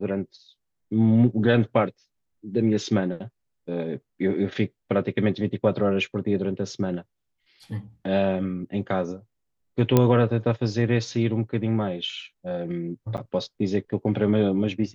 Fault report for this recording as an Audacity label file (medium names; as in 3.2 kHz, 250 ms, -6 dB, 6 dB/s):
9.970000	9.970000	pop -5 dBFS
13.170000	13.180000	dropout 8.7 ms